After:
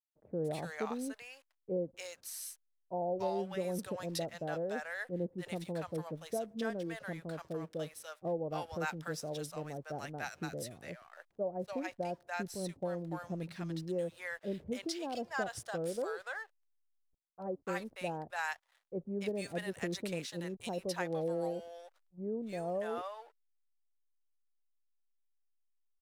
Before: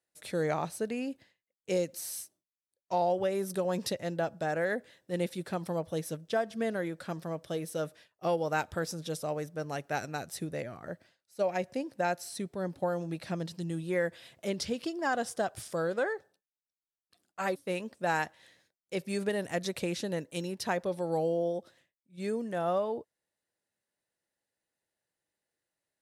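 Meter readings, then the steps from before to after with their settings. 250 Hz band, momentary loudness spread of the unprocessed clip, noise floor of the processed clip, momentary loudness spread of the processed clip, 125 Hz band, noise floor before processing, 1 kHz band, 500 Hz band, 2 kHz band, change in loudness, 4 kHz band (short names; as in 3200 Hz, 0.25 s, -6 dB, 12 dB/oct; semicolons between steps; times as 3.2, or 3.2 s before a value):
-4.0 dB, 8 LU, -77 dBFS, 7 LU, -4.0 dB, under -85 dBFS, -6.5 dB, -5.5 dB, -4.5 dB, -5.5 dB, -4.5 dB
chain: backlash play -50 dBFS; bands offset in time lows, highs 0.29 s, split 770 Hz; gain -4 dB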